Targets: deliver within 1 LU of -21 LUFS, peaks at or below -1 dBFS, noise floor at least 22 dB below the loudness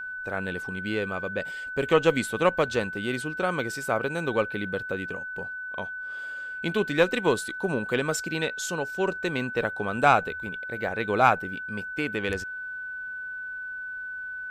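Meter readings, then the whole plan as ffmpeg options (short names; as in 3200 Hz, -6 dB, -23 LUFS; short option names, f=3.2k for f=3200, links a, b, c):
steady tone 1500 Hz; tone level -33 dBFS; loudness -28.0 LUFS; peak -5.0 dBFS; loudness target -21.0 LUFS
-> -af "bandreject=f=1.5k:w=30"
-af "volume=7dB,alimiter=limit=-1dB:level=0:latency=1"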